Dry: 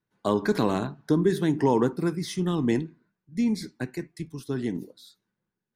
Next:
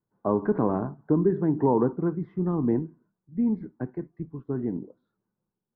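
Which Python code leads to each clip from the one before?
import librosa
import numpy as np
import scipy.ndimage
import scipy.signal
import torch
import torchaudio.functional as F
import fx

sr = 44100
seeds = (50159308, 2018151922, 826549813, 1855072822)

y = scipy.signal.sosfilt(scipy.signal.butter(4, 1200.0, 'lowpass', fs=sr, output='sos'), x)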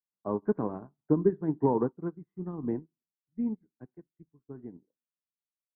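y = fx.upward_expand(x, sr, threshold_db=-40.0, expansion=2.5)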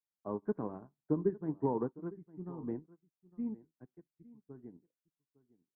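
y = x + 10.0 ** (-20.0 / 20.0) * np.pad(x, (int(857 * sr / 1000.0), 0))[:len(x)]
y = F.gain(torch.from_numpy(y), -7.0).numpy()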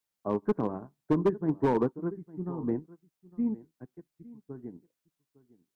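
y = np.clip(x, -10.0 ** (-27.0 / 20.0), 10.0 ** (-27.0 / 20.0))
y = F.gain(torch.from_numpy(y), 8.5).numpy()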